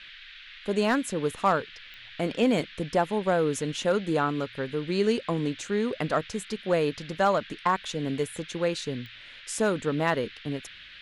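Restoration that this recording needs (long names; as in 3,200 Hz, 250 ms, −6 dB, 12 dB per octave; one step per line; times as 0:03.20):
clipped peaks rebuilt −13.5 dBFS
click removal
noise reduction from a noise print 25 dB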